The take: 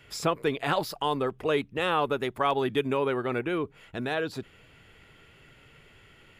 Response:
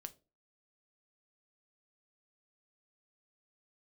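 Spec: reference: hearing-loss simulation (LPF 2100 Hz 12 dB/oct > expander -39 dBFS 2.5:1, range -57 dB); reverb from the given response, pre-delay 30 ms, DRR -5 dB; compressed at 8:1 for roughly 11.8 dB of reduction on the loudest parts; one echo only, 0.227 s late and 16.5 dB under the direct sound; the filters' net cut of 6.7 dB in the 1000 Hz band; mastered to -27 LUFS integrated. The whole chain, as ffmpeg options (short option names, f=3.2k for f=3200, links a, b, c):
-filter_complex "[0:a]equalizer=f=1k:t=o:g=-8.5,acompressor=threshold=-35dB:ratio=8,aecho=1:1:227:0.15,asplit=2[a][b];[1:a]atrim=start_sample=2205,adelay=30[c];[b][c]afir=irnorm=-1:irlink=0,volume=10dB[d];[a][d]amix=inputs=2:normalize=0,lowpass=2.1k,agate=range=-57dB:threshold=-39dB:ratio=2.5,volume=7dB"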